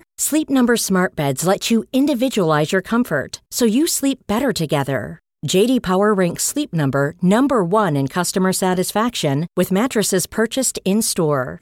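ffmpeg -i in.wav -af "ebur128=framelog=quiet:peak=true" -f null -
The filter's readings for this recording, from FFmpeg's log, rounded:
Integrated loudness:
  I:         -18.0 LUFS
  Threshold: -28.0 LUFS
Loudness range:
  LRA:         1.4 LU
  Threshold: -38.1 LUFS
  LRA low:   -18.8 LUFS
  LRA high:  -17.4 LUFS
True peak:
  Peak:       -4.1 dBFS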